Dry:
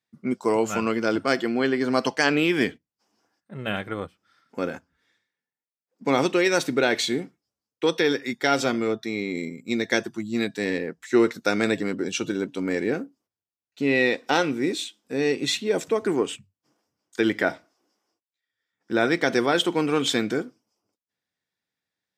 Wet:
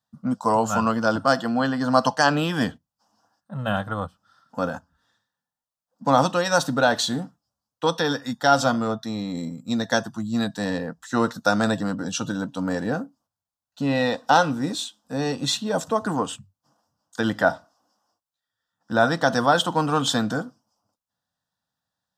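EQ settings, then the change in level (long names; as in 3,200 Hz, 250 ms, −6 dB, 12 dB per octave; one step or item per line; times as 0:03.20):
high-shelf EQ 5,100 Hz −7.5 dB
phaser with its sweep stopped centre 920 Hz, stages 4
+8.5 dB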